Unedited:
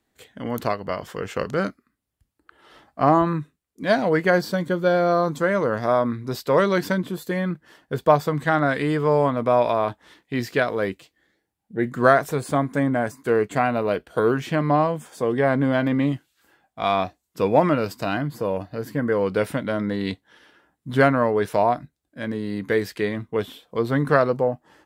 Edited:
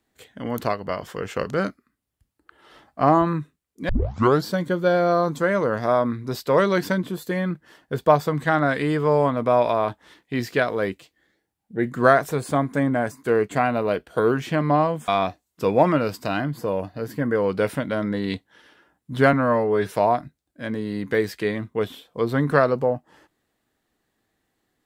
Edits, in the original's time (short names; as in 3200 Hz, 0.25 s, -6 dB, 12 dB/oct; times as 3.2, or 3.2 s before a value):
3.89 tape start 0.56 s
15.08–16.85 cut
21.1–21.49 stretch 1.5×